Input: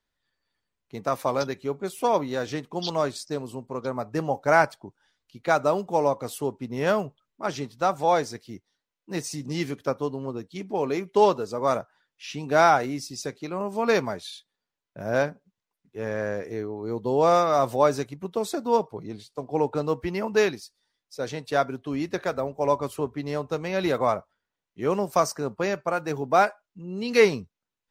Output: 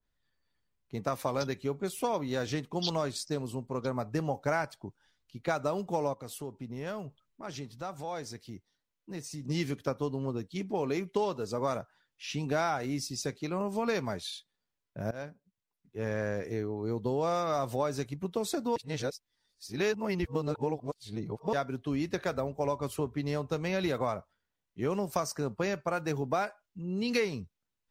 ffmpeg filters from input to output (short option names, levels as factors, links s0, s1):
-filter_complex "[0:a]asplit=3[s0][s1][s2];[s0]afade=t=out:st=6.13:d=0.02[s3];[s1]acompressor=threshold=0.00794:ratio=2:attack=3.2:release=140:knee=1:detection=peak,afade=t=in:st=6.13:d=0.02,afade=t=out:st=9.48:d=0.02[s4];[s2]afade=t=in:st=9.48:d=0.02[s5];[s3][s4][s5]amix=inputs=3:normalize=0,asplit=4[s6][s7][s8][s9];[s6]atrim=end=15.11,asetpts=PTS-STARTPTS,afade=t=out:st=15.106:d=0.004:c=hsin:silence=0.0944061[s10];[s7]atrim=start=15.11:end=18.762,asetpts=PTS-STARTPTS,afade=t=in:d=1.02:silence=0.0944061[s11];[s8]atrim=start=18.758:end=21.532,asetpts=PTS-STARTPTS,areverse[s12];[s9]atrim=start=21.528[s13];[s10][s11]concat=n=2:v=0:a=1[s14];[s14][s12]acrossfade=d=0.004:c1=hsin:c2=hsin[s15];[s15][s13]acrossfade=d=0.004:c1=hsin:c2=hsin,lowshelf=f=190:g=9.5,acompressor=threshold=0.0708:ratio=6,adynamicequalizer=threshold=0.00794:dfrequency=1700:dqfactor=0.7:tfrequency=1700:tqfactor=0.7:attack=5:release=100:ratio=0.375:range=2:mode=boostabove:tftype=highshelf,volume=0.631"